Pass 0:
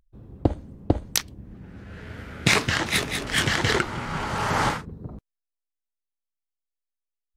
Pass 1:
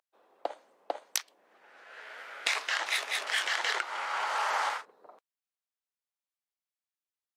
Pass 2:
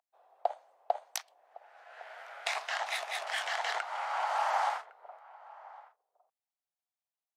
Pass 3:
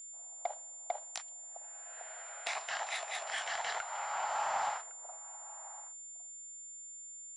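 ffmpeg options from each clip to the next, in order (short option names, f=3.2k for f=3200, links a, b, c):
-af "highpass=f=620:w=0.5412,highpass=f=620:w=1.3066,highshelf=f=8k:g=-6.5,acompressor=threshold=-26dB:ratio=12"
-filter_complex "[0:a]highpass=f=710:t=q:w=4.6,asplit=2[a][b];[b]adelay=1108,volume=-19dB,highshelf=f=4k:g=-24.9[c];[a][c]amix=inputs=2:normalize=0,volume=-6.5dB"
-af "asoftclip=type=tanh:threshold=-22dB,aeval=exprs='val(0)+0.00708*sin(2*PI*7200*n/s)':c=same,aresample=22050,aresample=44100,volume=-3dB"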